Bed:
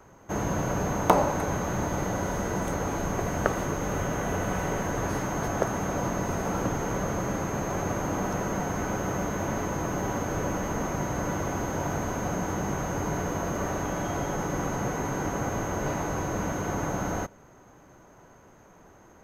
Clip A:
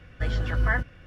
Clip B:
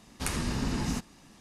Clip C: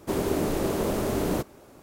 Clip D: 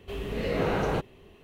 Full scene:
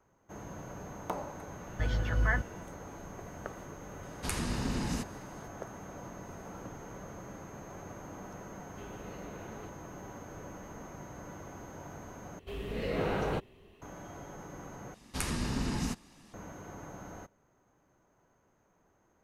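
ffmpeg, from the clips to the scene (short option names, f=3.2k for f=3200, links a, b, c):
-filter_complex "[2:a]asplit=2[a][b];[4:a]asplit=2[c][d];[0:a]volume=-16.5dB[e];[a]bandreject=f=5.6k:w=29[f];[c]acompressor=threshold=-31dB:ratio=6:attack=3.2:release=140:knee=1:detection=peak[g];[e]asplit=3[h][i][j];[h]atrim=end=12.394[k];[d]atrim=end=1.43,asetpts=PTS-STARTPTS,volume=-5dB[l];[i]atrim=start=13.816:end=14.944[m];[b]atrim=end=1.4,asetpts=PTS-STARTPTS,volume=-2.5dB[n];[j]atrim=start=16.336[o];[1:a]atrim=end=1.06,asetpts=PTS-STARTPTS,volume=-4.5dB,afade=t=in:d=0.004:c=hsin,afade=t=out:st=1.056:d=0.004:c=hsin,adelay=1590[p];[f]atrim=end=1.4,asetpts=PTS-STARTPTS,volume=-3dB,afade=t=in:d=0.004:c=hsin,afade=t=out:st=1.396:d=0.004:c=hsin,adelay=4030[q];[g]atrim=end=1.43,asetpts=PTS-STARTPTS,volume=-14dB,afade=t=in:d=0.004:c=hsin,afade=t=out:st=1.426:d=0.004:c=hsin,adelay=8690[r];[k][l]acrossfade=d=0.004:c1=hsin:c2=hsin[s];[s][m]acrossfade=d=0.004:c1=hsin:c2=hsin[t];[t][n]acrossfade=d=0.004:c1=hsin:c2=hsin[u];[u][o]acrossfade=d=0.004:c1=hsin:c2=hsin[v];[v][p][q][r]amix=inputs=4:normalize=0"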